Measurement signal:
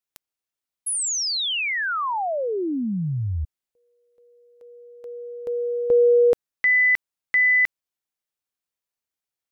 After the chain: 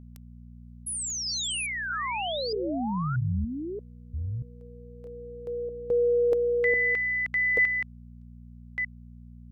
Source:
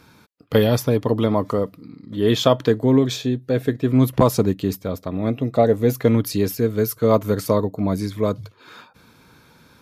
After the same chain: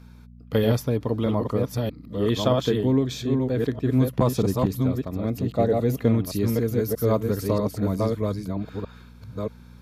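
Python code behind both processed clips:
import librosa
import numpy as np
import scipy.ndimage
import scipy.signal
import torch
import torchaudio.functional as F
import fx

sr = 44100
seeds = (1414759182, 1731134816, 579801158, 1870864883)

y = fx.reverse_delay(x, sr, ms=632, wet_db=-3)
y = fx.low_shelf(y, sr, hz=220.0, db=5.0)
y = fx.dmg_buzz(y, sr, base_hz=60.0, harmonics=4, level_db=-39.0, tilt_db=-4, odd_only=False)
y = y * librosa.db_to_amplitude(-7.5)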